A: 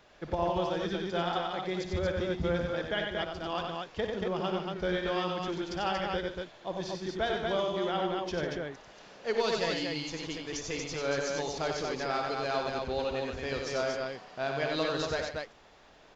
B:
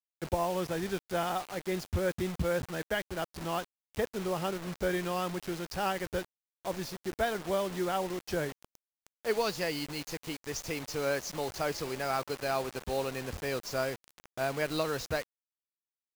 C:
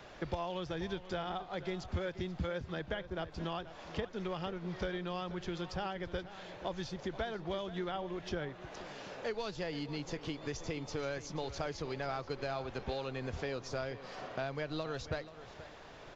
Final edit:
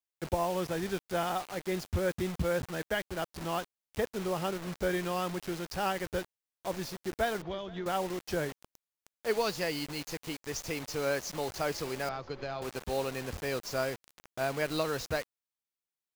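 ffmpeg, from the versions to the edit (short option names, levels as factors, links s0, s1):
-filter_complex "[2:a]asplit=2[s0][s1];[1:a]asplit=3[s2][s3][s4];[s2]atrim=end=7.422[s5];[s0]atrim=start=7.418:end=7.862[s6];[s3]atrim=start=7.858:end=12.092[s7];[s1]atrim=start=12.088:end=12.622[s8];[s4]atrim=start=12.618[s9];[s5][s6]acrossfade=d=0.004:c1=hsin:c2=hsin[s10];[s10][s7]acrossfade=d=0.004:c1=hsin:c2=hsin[s11];[s11][s8]acrossfade=d=0.004:c1=hsin:c2=hsin[s12];[s12][s9]acrossfade=d=0.004:c1=hsin:c2=hsin"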